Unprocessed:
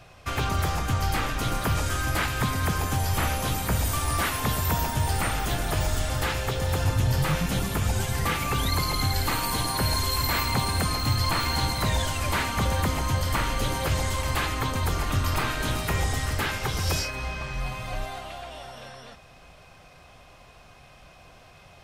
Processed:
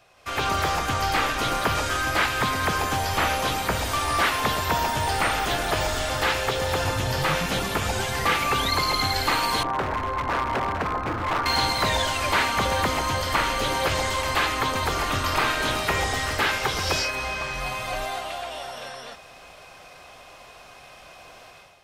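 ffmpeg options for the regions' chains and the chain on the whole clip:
ffmpeg -i in.wav -filter_complex "[0:a]asettb=1/sr,asplit=3[link_01][link_02][link_03];[link_01]atrim=end=9.634[link_04];[link_02]atrim=start=9.63:end=11.46,asetpts=PTS-STARTPTS,afade=type=in:duration=0.004:curve=qsin,afade=type=out:start_time=1.826:duration=0.004:curve=qsin,lowpass=frequency=1500:width=0.5412,lowpass=frequency=1500:width=1.3066,aeval=exprs='0.0708*(abs(mod(val(0)/0.0708+3,4)-2)-1)':channel_layout=same[link_05];[link_03]atrim=start=11.456[link_06];[link_04][link_05]acrossfade=duration=0.004:curve1=hsin:curve2=qsin[link_07];[link_07][link_06]acrossfade=duration=0.004:curve1=qsin:curve2=hsin,acrossover=split=5600[link_08][link_09];[link_09]acompressor=threshold=-46dB:ratio=4:attack=1:release=60[link_10];[link_08][link_10]amix=inputs=2:normalize=0,bass=frequency=250:gain=-12,treble=frequency=4000:gain=1,dynaudnorm=framelen=130:gausssize=5:maxgain=12dB,volume=-5.5dB" out.wav

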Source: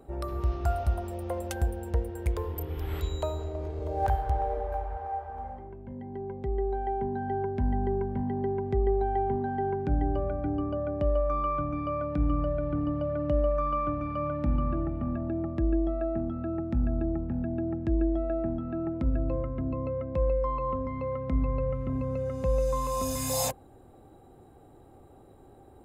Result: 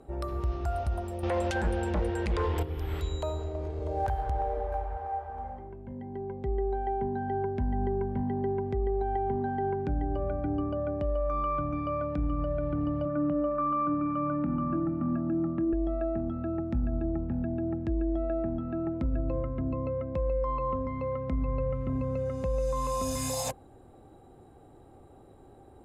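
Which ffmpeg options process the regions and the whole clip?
ffmpeg -i in.wav -filter_complex "[0:a]asettb=1/sr,asplit=3[link_01][link_02][link_03];[link_01]atrim=end=1.234[link_04];[link_02]atrim=start=1.23:end=2.63,asetpts=PTS-STARTPTS,afade=type=in:duration=0.004:curve=qsin,afade=type=out:start_time=1.396:duration=0.004:curve=qsin,lowpass=4700,aeval=exprs='0.158*sin(PI/2*2.51*val(0)/0.158)':channel_layout=same,tiltshelf=frequency=1100:gain=-5.5[link_05];[link_03]atrim=start=2.626[link_06];[link_04][link_05]acrossfade=duration=0.004:curve1=hsin:curve2=qsin[link_07];[link_07][link_06]acrossfade=duration=0.004:curve1=qsin:curve2=hsin,asettb=1/sr,asplit=3[link_08][link_09][link_10];[link_08]atrim=end=13.054[link_11];[link_09]atrim=start=13.05:end=15.73,asetpts=PTS-STARTPTS,afade=type=in:duration=0.004:curve=qsin,afade=type=out:start_time=2.676:duration=0.004:curve=qsin,highpass=150,equalizer=frequency=170:width_type=q:width=4:gain=9,equalizer=frequency=300:width_type=q:width=4:gain=9,equalizer=frequency=430:width_type=q:width=4:gain=-9,equalizer=frequency=680:width_type=q:width=4:gain=-3,equalizer=frequency=1300:width_type=q:width=4:gain=7,equalizer=frequency=2000:width_type=q:width=4:gain=-5,lowpass=frequency=2500:width=0.5412,lowpass=frequency=2500:width=1.3066,asplit=2[link_12][link_13];[link_13]adelay=25,volume=-13.5dB[link_14];[link_12][link_14]amix=inputs=2:normalize=0,atrim=end_sample=118188[link_15];[link_10]atrim=start=15.726[link_16];[link_11][link_15]acrossfade=duration=0.004:curve1=hsin:curve2=qsin[link_17];[link_17][link_16]acrossfade=duration=0.004:curve1=qsin:curve2=hsin,alimiter=limit=-21.5dB:level=0:latency=1:release=56,lowpass=11000" out.wav

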